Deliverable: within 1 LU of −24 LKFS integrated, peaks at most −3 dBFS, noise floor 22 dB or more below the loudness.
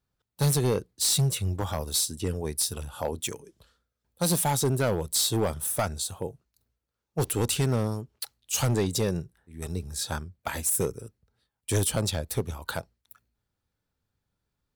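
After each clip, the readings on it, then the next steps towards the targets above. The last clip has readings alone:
share of clipped samples 1.0%; peaks flattened at −19.0 dBFS; integrated loudness −28.0 LKFS; sample peak −19.0 dBFS; target loudness −24.0 LKFS
→ clipped peaks rebuilt −19 dBFS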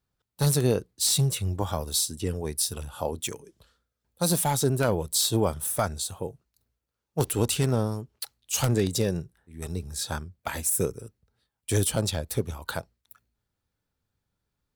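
share of clipped samples 0.0%; integrated loudness −27.0 LKFS; sample peak −10.0 dBFS; target loudness −24.0 LKFS
→ level +3 dB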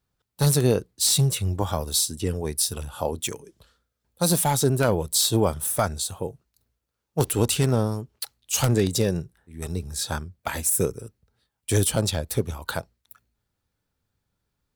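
integrated loudness −24.0 LKFS; sample peak −7.0 dBFS; background noise floor −81 dBFS

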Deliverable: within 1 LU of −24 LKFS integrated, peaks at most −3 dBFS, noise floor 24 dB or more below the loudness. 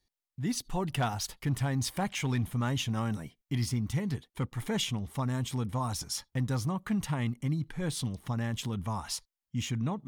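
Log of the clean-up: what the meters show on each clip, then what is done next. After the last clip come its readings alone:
share of clipped samples 0.3%; peaks flattened at −22.0 dBFS; integrated loudness −33.0 LKFS; sample peak −22.0 dBFS; target loudness −24.0 LKFS
→ clipped peaks rebuilt −22 dBFS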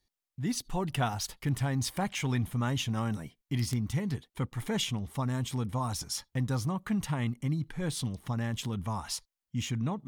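share of clipped samples 0.0%; integrated loudness −33.0 LKFS; sample peak −13.0 dBFS; target loudness −24.0 LKFS
→ level +9 dB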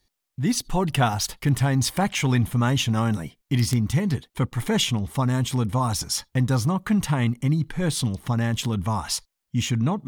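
integrated loudness −24.0 LKFS; sample peak −4.0 dBFS; background noise floor −81 dBFS

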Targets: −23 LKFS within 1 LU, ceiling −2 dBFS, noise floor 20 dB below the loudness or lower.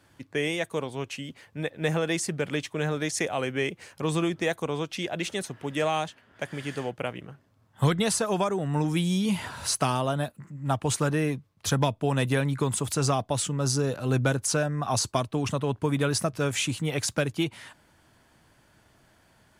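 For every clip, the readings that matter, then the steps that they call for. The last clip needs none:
integrated loudness −28.0 LKFS; sample peak −12.5 dBFS; target loudness −23.0 LKFS
→ level +5 dB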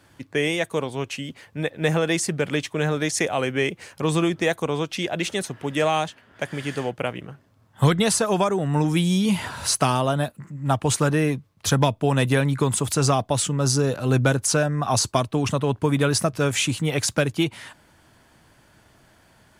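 integrated loudness −23.0 LKFS; sample peak −7.5 dBFS; background noise floor −57 dBFS

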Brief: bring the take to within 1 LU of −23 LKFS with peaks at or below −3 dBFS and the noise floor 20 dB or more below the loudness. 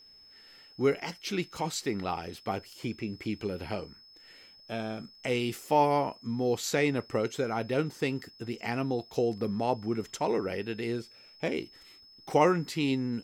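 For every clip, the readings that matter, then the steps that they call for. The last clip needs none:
interfering tone 5,200 Hz; level of the tone −53 dBFS; integrated loudness −31.0 LKFS; sample peak −10.5 dBFS; target loudness −23.0 LKFS
→ notch filter 5,200 Hz, Q 30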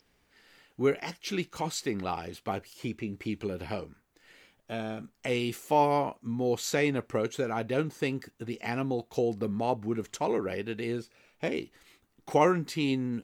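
interfering tone none found; integrated loudness −31.5 LKFS; sample peak −10.5 dBFS; target loudness −23.0 LKFS
→ level +8.5 dB
brickwall limiter −3 dBFS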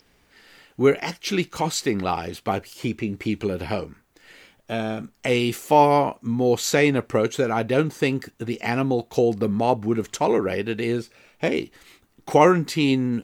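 integrated loudness −23.0 LKFS; sample peak −3.0 dBFS; background noise floor −62 dBFS

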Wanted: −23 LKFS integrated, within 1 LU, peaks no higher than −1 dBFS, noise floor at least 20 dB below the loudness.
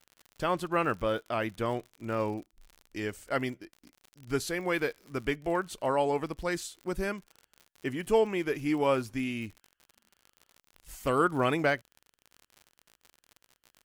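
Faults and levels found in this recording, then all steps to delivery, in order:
crackle rate 59 per second; integrated loudness −31.0 LKFS; sample peak −13.5 dBFS; target loudness −23.0 LKFS
→ click removal
level +8 dB

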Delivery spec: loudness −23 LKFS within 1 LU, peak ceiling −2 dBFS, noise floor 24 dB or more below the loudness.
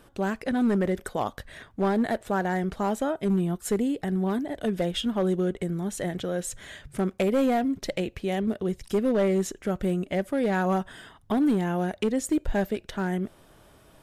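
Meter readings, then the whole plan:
share of clipped samples 1.4%; peaks flattened at −18.0 dBFS; integrated loudness −27.5 LKFS; sample peak −18.0 dBFS; target loudness −23.0 LKFS
→ clipped peaks rebuilt −18 dBFS
level +4.5 dB

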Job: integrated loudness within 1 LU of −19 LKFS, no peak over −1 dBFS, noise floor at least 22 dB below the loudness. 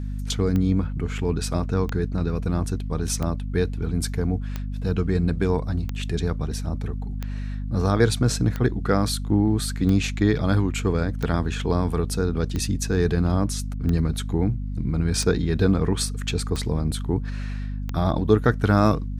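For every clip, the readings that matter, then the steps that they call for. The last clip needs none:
number of clicks 14; mains hum 50 Hz; hum harmonics up to 250 Hz; level of the hum −26 dBFS; integrated loudness −24.0 LKFS; sample peak −4.5 dBFS; target loudness −19.0 LKFS
→ click removal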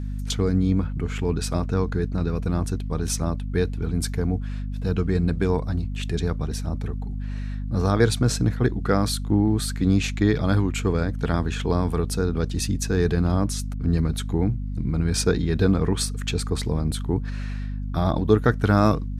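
number of clicks 0; mains hum 50 Hz; hum harmonics up to 250 Hz; level of the hum −26 dBFS
→ mains-hum notches 50/100/150/200/250 Hz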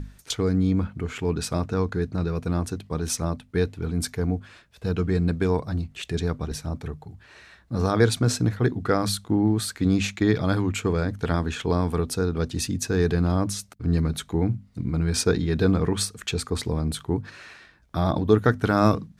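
mains hum none found; integrated loudness −25.0 LKFS; sample peak −4.0 dBFS; target loudness −19.0 LKFS
→ level +6 dB
brickwall limiter −1 dBFS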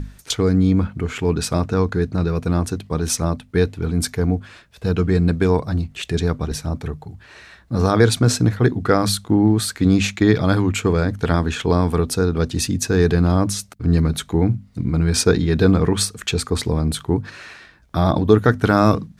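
integrated loudness −19.5 LKFS; sample peak −1.0 dBFS; background noise floor −49 dBFS

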